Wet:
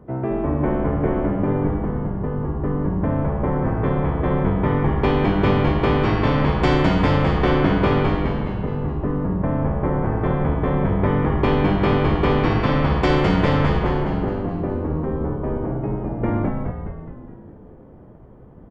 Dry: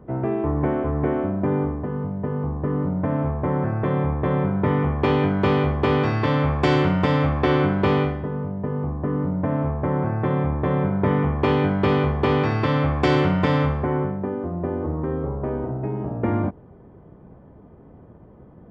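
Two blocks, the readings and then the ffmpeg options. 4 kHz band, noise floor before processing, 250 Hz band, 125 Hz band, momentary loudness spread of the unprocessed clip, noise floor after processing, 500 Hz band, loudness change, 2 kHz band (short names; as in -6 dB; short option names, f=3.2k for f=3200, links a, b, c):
+2.0 dB, -47 dBFS, +2.0 dB, +1.5 dB, 8 LU, -43 dBFS, +1.0 dB, +1.5 dB, +2.0 dB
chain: -filter_complex "[0:a]asplit=9[a][b][c][d][e][f][g][h][i];[b]adelay=209,afreqshift=-89,volume=-3.5dB[j];[c]adelay=418,afreqshift=-178,volume=-8.4dB[k];[d]adelay=627,afreqshift=-267,volume=-13.3dB[l];[e]adelay=836,afreqshift=-356,volume=-18.1dB[m];[f]adelay=1045,afreqshift=-445,volume=-23dB[n];[g]adelay=1254,afreqshift=-534,volume=-27.9dB[o];[h]adelay=1463,afreqshift=-623,volume=-32.8dB[p];[i]adelay=1672,afreqshift=-712,volume=-37.7dB[q];[a][j][k][l][m][n][o][p][q]amix=inputs=9:normalize=0"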